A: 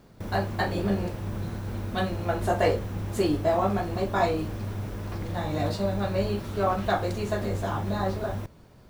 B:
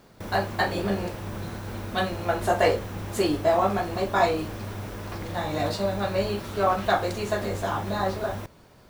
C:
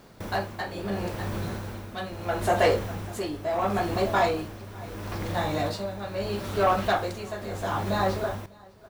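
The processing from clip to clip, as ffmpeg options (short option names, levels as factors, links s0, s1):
-af "lowshelf=f=330:g=-8.5,volume=1.68"
-af "aecho=1:1:600:0.133,asoftclip=type=tanh:threshold=0.158,tremolo=f=0.75:d=0.68,volume=1.33"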